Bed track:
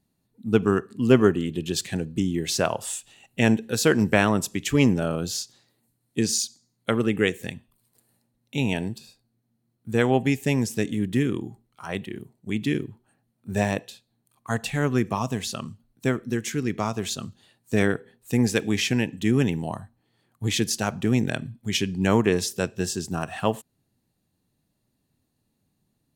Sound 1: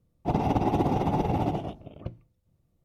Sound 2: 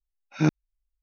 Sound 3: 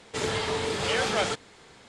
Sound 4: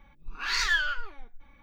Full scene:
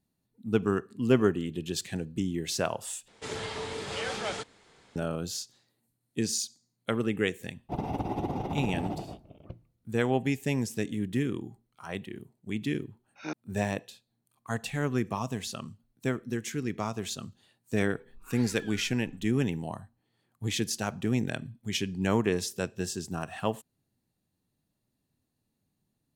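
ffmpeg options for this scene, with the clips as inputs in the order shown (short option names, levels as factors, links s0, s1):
-filter_complex "[0:a]volume=0.501[s0];[2:a]highpass=400[s1];[4:a]acompressor=threshold=0.0112:ratio=6:attack=3.2:release=140:knee=1:detection=peak[s2];[s0]asplit=2[s3][s4];[s3]atrim=end=3.084[s5];[3:a]atrim=end=1.88,asetpts=PTS-STARTPTS,volume=0.422[s6];[s4]atrim=start=4.956[s7];[1:a]atrim=end=2.84,asetpts=PTS-STARTPTS,volume=0.422,afade=t=in:d=0.004:c=hsin,afade=t=out:st=2.836:d=0.004:c=hsin,adelay=7440[s8];[s1]atrim=end=1.02,asetpts=PTS-STARTPTS,volume=0.398,afade=t=in:d=0.004:c=hsin,afade=t=out:st=1.016:d=0.004:c=hsin,adelay=566244S[s9];[s2]atrim=end=1.62,asetpts=PTS-STARTPTS,volume=0.447,afade=t=in:d=0.004:c=hsin,afade=t=out:st=1.616:d=0.004:c=hsin,adelay=17890[s10];[s5][s6]acrossfade=d=0.004:c1=hsin:c2=hsin[s11];[s11][s7]acrossfade=d=0.004:c1=hsin:c2=hsin[s12];[s12][s8][s9][s10]amix=inputs=4:normalize=0"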